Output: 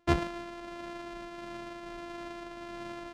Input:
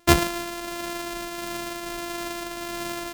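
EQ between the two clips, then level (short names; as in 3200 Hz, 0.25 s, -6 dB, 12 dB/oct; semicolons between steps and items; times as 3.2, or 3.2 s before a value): tape spacing loss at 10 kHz 21 dB; -7.5 dB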